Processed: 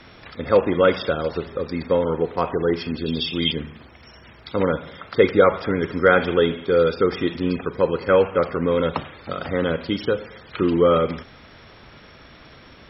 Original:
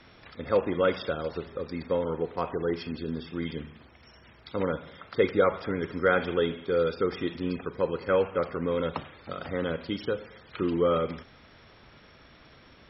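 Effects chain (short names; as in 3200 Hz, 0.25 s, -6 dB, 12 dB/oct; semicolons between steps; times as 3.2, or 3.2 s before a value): 3.06–3.52 resonant high shelf 2200 Hz +10 dB, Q 3; gain +8 dB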